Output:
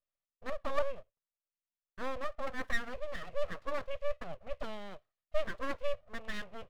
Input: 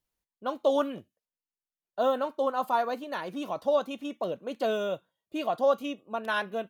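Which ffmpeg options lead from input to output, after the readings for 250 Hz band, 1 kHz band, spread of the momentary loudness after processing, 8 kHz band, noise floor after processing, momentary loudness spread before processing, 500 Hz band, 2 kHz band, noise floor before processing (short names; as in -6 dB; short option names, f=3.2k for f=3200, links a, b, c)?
-13.0 dB, -12.0 dB, 10 LU, n/a, under -85 dBFS, 10 LU, -10.5 dB, -3.5 dB, under -85 dBFS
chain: -filter_complex "[0:a]asplit=3[a][b][c];[a]bandpass=f=300:t=q:w=8,volume=0dB[d];[b]bandpass=f=870:t=q:w=8,volume=-6dB[e];[c]bandpass=f=2.24k:t=q:w=8,volume=-9dB[f];[d][e][f]amix=inputs=3:normalize=0,aeval=exprs='abs(val(0))':c=same,volume=8.5dB"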